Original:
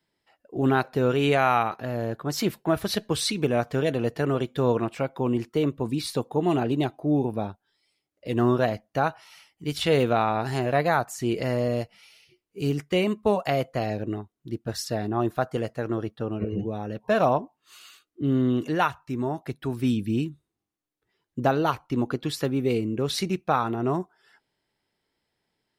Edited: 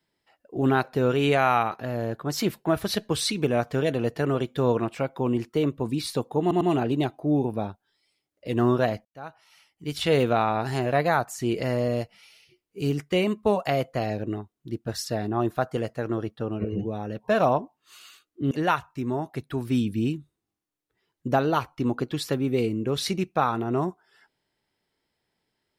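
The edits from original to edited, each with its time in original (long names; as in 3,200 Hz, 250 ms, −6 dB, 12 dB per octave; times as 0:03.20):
0:06.41: stutter 0.10 s, 3 plays
0:08.85–0:09.93: fade in
0:18.31–0:18.63: remove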